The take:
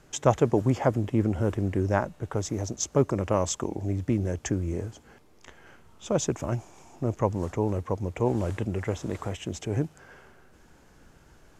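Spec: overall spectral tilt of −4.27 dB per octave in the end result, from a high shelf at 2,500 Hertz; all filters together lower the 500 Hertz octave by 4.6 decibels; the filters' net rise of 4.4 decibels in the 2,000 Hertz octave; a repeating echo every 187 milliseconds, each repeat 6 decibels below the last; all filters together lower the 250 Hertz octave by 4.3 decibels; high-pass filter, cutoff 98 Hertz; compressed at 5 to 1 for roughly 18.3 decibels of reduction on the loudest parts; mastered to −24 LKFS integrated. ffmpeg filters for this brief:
ffmpeg -i in.wav -af "highpass=98,equalizer=frequency=250:width_type=o:gain=-4,equalizer=frequency=500:width_type=o:gain=-5,equalizer=frequency=2000:width_type=o:gain=4.5,highshelf=frequency=2500:gain=4,acompressor=threshold=-38dB:ratio=5,aecho=1:1:187|374|561|748|935|1122:0.501|0.251|0.125|0.0626|0.0313|0.0157,volume=17dB" out.wav

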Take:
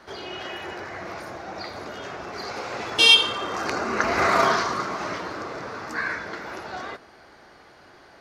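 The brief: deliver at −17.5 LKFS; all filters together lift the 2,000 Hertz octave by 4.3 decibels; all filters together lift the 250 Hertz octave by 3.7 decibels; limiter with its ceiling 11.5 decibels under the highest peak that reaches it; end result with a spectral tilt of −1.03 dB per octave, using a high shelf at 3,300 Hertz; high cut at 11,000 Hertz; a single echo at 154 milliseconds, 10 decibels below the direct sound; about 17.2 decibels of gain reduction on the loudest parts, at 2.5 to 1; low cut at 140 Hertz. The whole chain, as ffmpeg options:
ffmpeg -i in.wav -af "highpass=140,lowpass=11000,equalizer=frequency=250:width_type=o:gain=5.5,equalizer=frequency=2000:width_type=o:gain=9,highshelf=frequency=3300:gain=-8,acompressor=threshold=-37dB:ratio=2.5,alimiter=level_in=3.5dB:limit=-24dB:level=0:latency=1,volume=-3.5dB,aecho=1:1:154:0.316,volume=19dB" out.wav

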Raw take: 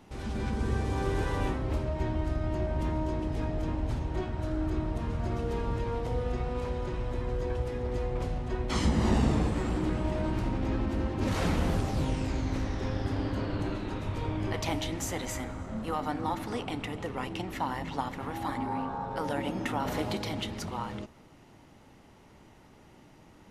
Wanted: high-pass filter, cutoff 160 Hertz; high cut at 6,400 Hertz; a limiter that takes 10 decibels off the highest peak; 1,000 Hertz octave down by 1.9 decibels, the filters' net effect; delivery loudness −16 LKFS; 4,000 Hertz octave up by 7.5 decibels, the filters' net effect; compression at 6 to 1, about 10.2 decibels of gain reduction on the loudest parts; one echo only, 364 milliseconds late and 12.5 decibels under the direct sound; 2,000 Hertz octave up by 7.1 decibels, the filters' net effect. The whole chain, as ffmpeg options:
ffmpeg -i in.wav -af "highpass=160,lowpass=6400,equalizer=frequency=1000:width_type=o:gain=-4.5,equalizer=frequency=2000:width_type=o:gain=8,equalizer=frequency=4000:width_type=o:gain=7.5,acompressor=threshold=-35dB:ratio=6,alimiter=level_in=6dB:limit=-24dB:level=0:latency=1,volume=-6dB,aecho=1:1:364:0.237,volume=23.5dB" out.wav

